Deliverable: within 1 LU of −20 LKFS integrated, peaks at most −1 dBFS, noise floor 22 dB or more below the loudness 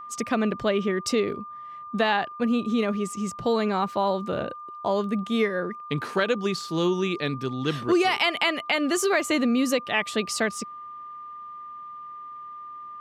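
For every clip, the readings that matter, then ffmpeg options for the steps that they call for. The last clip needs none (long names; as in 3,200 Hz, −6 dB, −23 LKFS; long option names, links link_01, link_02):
interfering tone 1,200 Hz; level of the tone −37 dBFS; integrated loudness −25.5 LKFS; sample peak −11.0 dBFS; target loudness −20.0 LKFS
→ -af "bandreject=frequency=1200:width=30"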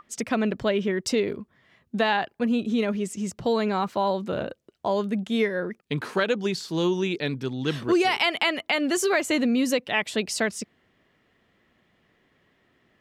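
interfering tone none found; integrated loudness −25.5 LKFS; sample peak −11.0 dBFS; target loudness −20.0 LKFS
→ -af "volume=5.5dB"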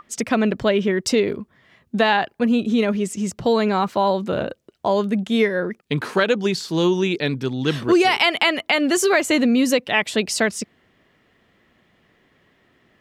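integrated loudness −20.0 LKFS; sample peak −5.5 dBFS; background noise floor −62 dBFS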